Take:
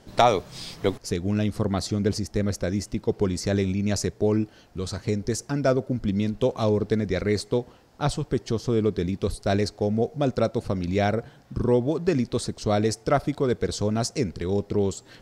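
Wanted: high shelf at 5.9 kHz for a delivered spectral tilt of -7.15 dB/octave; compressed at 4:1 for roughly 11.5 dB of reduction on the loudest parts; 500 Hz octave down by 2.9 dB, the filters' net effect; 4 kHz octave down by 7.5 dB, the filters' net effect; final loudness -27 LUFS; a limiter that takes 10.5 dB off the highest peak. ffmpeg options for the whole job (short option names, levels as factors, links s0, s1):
-af "equalizer=f=500:t=o:g=-3.5,equalizer=f=4000:t=o:g=-6.5,highshelf=f=5900:g=-7,acompressor=threshold=0.0355:ratio=4,volume=2.51,alimiter=limit=0.168:level=0:latency=1"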